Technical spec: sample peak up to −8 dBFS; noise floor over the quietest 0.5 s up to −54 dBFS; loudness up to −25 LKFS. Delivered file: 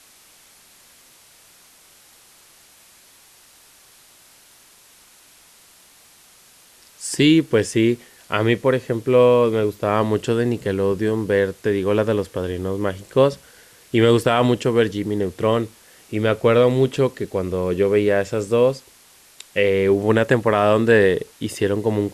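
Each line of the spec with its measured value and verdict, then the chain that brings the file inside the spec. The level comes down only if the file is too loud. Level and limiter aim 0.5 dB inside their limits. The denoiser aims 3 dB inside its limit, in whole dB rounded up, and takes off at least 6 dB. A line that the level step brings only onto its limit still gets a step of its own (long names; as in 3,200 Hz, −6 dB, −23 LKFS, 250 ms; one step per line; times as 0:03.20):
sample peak −3.5 dBFS: out of spec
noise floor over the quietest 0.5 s −51 dBFS: out of spec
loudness −19.5 LKFS: out of spec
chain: level −6 dB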